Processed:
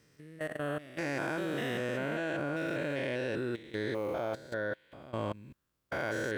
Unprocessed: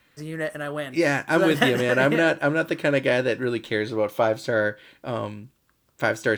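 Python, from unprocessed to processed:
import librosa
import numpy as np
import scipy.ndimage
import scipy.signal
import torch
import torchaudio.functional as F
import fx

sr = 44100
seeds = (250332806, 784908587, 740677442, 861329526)

y = fx.spec_steps(x, sr, hold_ms=200)
y = fx.level_steps(y, sr, step_db=16)
y = y * librosa.db_to_amplitude(-2.0)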